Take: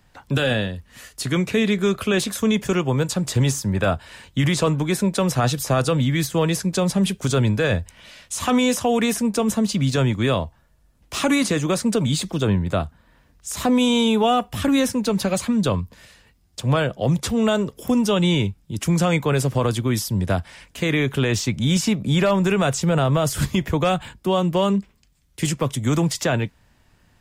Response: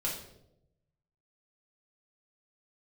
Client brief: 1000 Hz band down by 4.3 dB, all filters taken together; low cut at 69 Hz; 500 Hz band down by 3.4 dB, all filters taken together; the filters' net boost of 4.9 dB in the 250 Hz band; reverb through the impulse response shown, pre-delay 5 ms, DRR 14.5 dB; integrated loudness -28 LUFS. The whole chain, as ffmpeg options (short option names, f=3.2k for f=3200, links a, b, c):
-filter_complex "[0:a]highpass=69,equalizer=f=250:t=o:g=7.5,equalizer=f=500:t=o:g=-5.5,equalizer=f=1k:t=o:g=-4.5,asplit=2[a][b];[1:a]atrim=start_sample=2205,adelay=5[c];[b][c]afir=irnorm=-1:irlink=0,volume=-18.5dB[d];[a][d]amix=inputs=2:normalize=0,volume=-9.5dB"